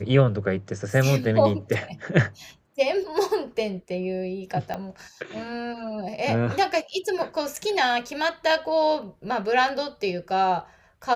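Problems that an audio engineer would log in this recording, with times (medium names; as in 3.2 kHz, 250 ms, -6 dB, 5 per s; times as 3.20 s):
4.74 s: pop -17 dBFS
7.56–7.57 s: dropout 5.9 ms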